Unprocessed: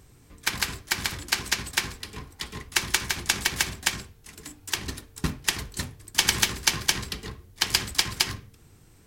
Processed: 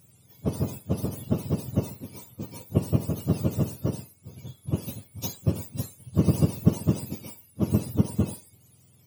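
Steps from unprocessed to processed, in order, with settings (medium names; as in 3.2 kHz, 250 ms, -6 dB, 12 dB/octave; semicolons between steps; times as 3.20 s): spectrum inverted on a logarithmic axis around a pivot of 1 kHz; treble shelf 6.6 kHz +10.5 dB; trim -5.5 dB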